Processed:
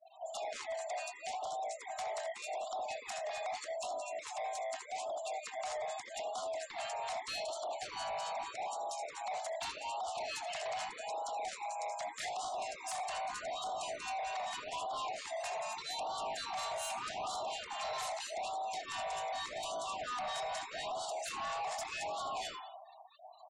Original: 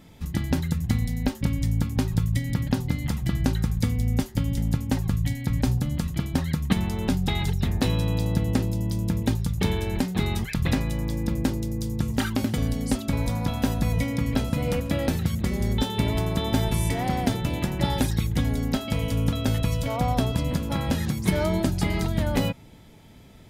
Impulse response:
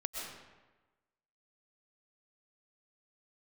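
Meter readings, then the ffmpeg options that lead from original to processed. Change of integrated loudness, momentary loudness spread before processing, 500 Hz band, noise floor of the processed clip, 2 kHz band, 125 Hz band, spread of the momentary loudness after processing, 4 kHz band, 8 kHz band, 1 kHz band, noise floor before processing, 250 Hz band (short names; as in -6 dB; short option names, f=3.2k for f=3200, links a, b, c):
-13.5 dB, 3 LU, -8.0 dB, -52 dBFS, -8.0 dB, under -40 dB, 3 LU, -8.0 dB, -6.0 dB, -1.5 dB, -46 dBFS, -37.5 dB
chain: -filter_complex "[0:a]highpass=f=150:w=0.5412,highpass=f=150:w=1.3066,equalizer=f=180:t=q:w=4:g=-3,equalizer=f=300:t=q:w=4:g=3,equalizer=f=880:t=q:w=4:g=-10,equalizer=f=1.8k:t=q:w=4:g=-4,equalizer=f=6.6k:t=q:w=4:g=7,lowpass=f=9k:w=0.5412,lowpass=f=9k:w=1.3066,bandreject=f=360:w=12,aecho=1:1:66|79:0.266|0.398,acrossover=split=540[a][b];[a]aeval=exprs='val(0)*(1-0.7/2+0.7/2*cos(2*PI*4.3*n/s))':c=same[c];[b]aeval=exprs='val(0)*(1-0.7/2-0.7/2*cos(2*PI*4.3*n/s))':c=same[d];[c][d]amix=inputs=2:normalize=0,afreqshift=490,alimiter=level_in=0.5dB:limit=-24dB:level=0:latency=1:release=13,volume=-0.5dB,equalizer=f=1.8k:t=o:w=1.2:g=2.5,asplit=2[e][f];[1:a]atrim=start_sample=2205,asetrate=79380,aresample=44100[g];[f][g]afir=irnorm=-1:irlink=0,volume=-3.5dB[h];[e][h]amix=inputs=2:normalize=0,asoftclip=type=tanh:threshold=-34dB,afftfilt=real='re*gte(hypot(re,im),0.00398)':imag='im*gte(hypot(re,im),0.00398)':win_size=1024:overlap=0.75,afftfilt=real='re*(1-between(b*sr/1024,270*pow(2100/270,0.5+0.5*sin(2*PI*0.82*pts/sr))/1.41,270*pow(2100/270,0.5+0.5*sin(2*PI*0.82*pts/sr))*1.41))':imag='im*(1-between(b*sr/1024,270*pow(2100/270,0.5+0.5*sin(2*PI*0.82*pts/sr))/1.41,270*pow(2100/270,0.5+0.5*sin(2*PI*0.82*pts/sr))*1.41))':win_size=1024:overlap=0.75,volume=-2dB"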